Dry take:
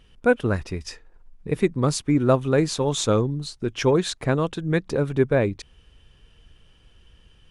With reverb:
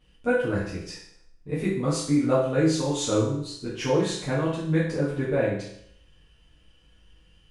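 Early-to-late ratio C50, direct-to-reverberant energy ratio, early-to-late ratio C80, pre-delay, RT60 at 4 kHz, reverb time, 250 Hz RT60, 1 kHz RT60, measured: 2.5 dB, -9.0 dB, 6.5 dB, 6 ms, 0.65 s, 0.70 s, 0.70 s, 0.65 s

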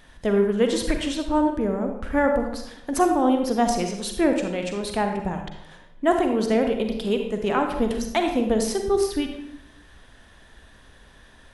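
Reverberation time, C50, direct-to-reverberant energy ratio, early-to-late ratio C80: 0.80 s, 5.0 dB, 4.0 dB, 8.0 dB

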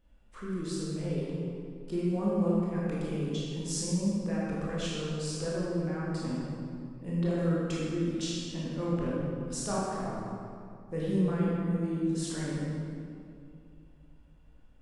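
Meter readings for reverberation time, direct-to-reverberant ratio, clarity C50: 2.4 s, -7.0 dB, -3.5 dB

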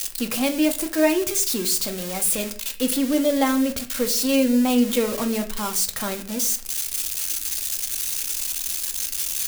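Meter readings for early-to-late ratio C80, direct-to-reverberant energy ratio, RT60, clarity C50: 17.5 dB, 5.0 dB, 0.50 s, 13.0 dB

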